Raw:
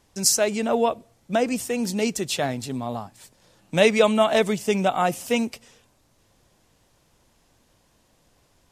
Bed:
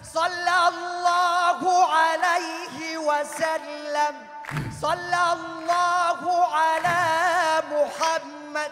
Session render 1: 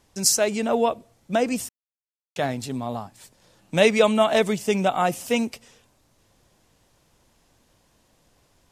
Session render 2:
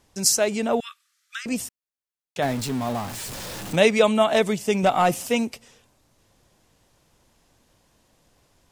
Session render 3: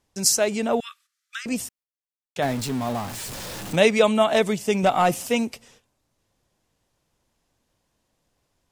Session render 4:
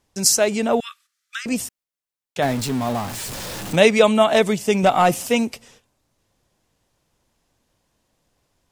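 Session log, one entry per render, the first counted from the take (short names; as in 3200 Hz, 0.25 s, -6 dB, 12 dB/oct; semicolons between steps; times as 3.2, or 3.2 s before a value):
1.69–2.36 mute
0.8–1.46 rippled Chebyshev high-pass 1200 Hz, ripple 3 dB; 2.42–3.76 zero-crossing step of -29 dBFS; 4.83–5.28 sample leveller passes 1
gate -54 dBFS, range -10 dB
gain +3.5 dB; limiter -1 dBFS, peak gain reduction 1 dB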